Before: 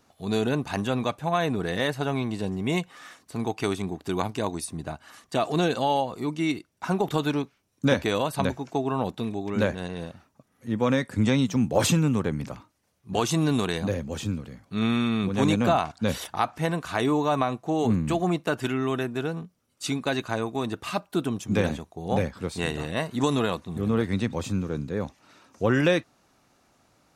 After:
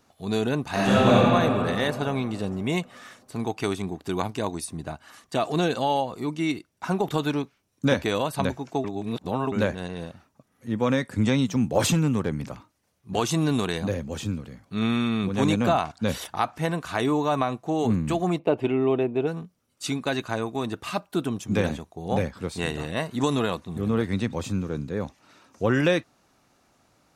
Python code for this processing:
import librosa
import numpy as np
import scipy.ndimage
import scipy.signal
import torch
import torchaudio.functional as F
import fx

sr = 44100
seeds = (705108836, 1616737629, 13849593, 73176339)

y = fx.reverb_throw(x, sr, start_s=0.7, length_s=0.44, rt60_s=2.9, drr_db=-10.0)
y = fx.clip_hard(y, sr, threshold_db=-15.5, at=(11.84, 13.16))
y = fx.curve_eq(y, sr, hz=(210.0, 400.0, 840.0, 1600.0, 2400.0, 6100.0), db=(0, 7, 4, -12, 1, -19), at=(18.38, 19.26), fade=0.02)
y = fx.edit(y, sr, fx.reverse_span(start_s=8.84, length_s=0.68), tone=tone)